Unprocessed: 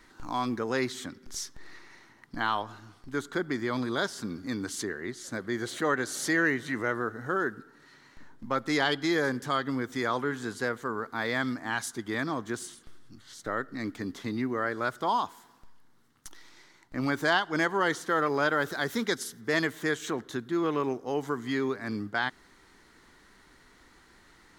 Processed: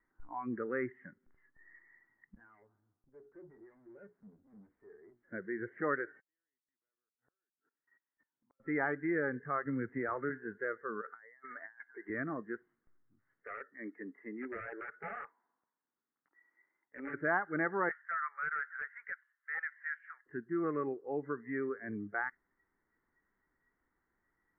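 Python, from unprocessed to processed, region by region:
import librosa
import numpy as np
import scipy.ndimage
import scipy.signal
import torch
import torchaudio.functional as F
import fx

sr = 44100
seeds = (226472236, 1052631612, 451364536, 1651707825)

y = fx.chain(x, sr, fx.peak_eq(hz=1800.0, db=-11.5, octaves=2.4),
    fx.hum_notches(base_hz=60, count=8),
    fx.tube_stage(drive_db=41.0, bias=0.45), at=(2.35, 5.23))
y = fx.chain(y, sr, fx.highpass(hz=370.0, slope=6),
    fx.level_steps(step_db=19),
    fx.gate_flip(shuts_db=-41.0, range_db=-36), at=(6.2, 8.6))
y = fx.chain(y, sr, fx.cvsd(bps=32000),
    fx.bass_treble(bass_db=3, treble_db=-13),
    fx.band_squash(depth_pct=40), at=(9.65, 10.3))
y = fx.chain(y, sr, fx.highpass(hz=450.0, slope=12),
    fx.over_compress(threshold_db=-40.0, ratio=-0.5), at=(11.01, 12.1))
y = fx.chain(y, sr, fx.highpass(hz=280.0, slope=12),
    fx.overflow_wrap(gain_db=25.5), at=(13.43, 17.14))
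y = fx.chain(y, sr, fx.highpass(hz=1100.0, slope=24),
    fx.overflow_wrap(gain_db=20.5), at=(17.89, 20.26))
y = fx.noise_reduce_blind(y, sr, reduce_db=17)
y = scipy.signal.sosfilt(scipy.signal.butter(12, 2100.0, 'lowpass', fs=sr, output='sos'), y)
y = F.gain(torch.from_numpy(y), -6.0).numpy()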